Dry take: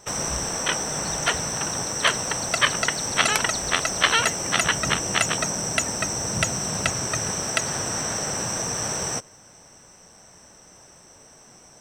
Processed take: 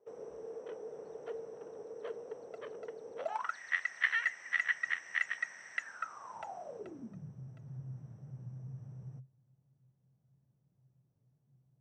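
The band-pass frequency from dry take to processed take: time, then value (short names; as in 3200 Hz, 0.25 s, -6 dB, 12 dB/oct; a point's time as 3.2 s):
band-pass, Q 14
3.17 s 450 Hz
3.58 s 1900 Hz
5.76 s 1900 Hz
6.62 s 680 Hz
7.3 s 130 Hz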